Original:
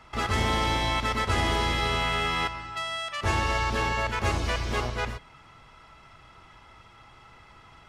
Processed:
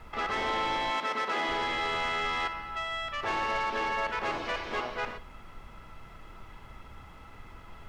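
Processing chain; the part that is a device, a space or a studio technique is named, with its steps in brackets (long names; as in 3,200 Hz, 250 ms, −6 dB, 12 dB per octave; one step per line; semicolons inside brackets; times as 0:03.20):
aircraft cabin announcement (band-pass filter 370–3,100 Hz; soft clipping −24 dBFS, distortion −15 dB; brown noise bed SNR 13 dB)
0:00.90–0:01.48: high-pass filter 170 Hz 24 dB per octave
flutter between parallel walls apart 10.5 metres, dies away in 0.24 s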